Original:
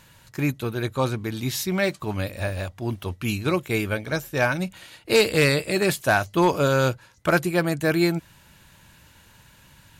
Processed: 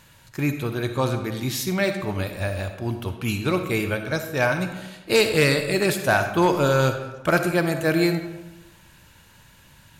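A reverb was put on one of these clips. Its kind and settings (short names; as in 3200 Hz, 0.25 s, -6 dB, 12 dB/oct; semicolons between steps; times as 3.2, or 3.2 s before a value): digital reverb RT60 1.1 s, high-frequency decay 0.6×, pre-delay 15 ms, DRR 7 dB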